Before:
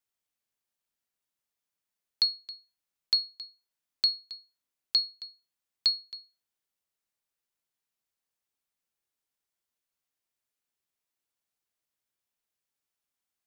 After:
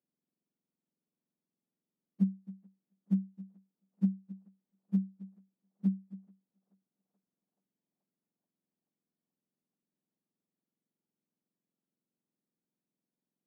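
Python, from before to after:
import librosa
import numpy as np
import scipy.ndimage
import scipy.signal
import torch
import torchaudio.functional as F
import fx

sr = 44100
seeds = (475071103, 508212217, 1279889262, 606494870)

y = fx.octave_mirror(x, sr, pivot_hz=910.0)
y = scipy.signal.sosfilt(scipy.signal.butter(6, 190.0, 'highpass', fs=sr, output='sos'), y)
y = fx.echo_banded(y, sr, ms=431, feedback_pct=78, hz=800.0, wet_db=-23.0)
y = y * 10.0 ** (-2.5 / 20.0)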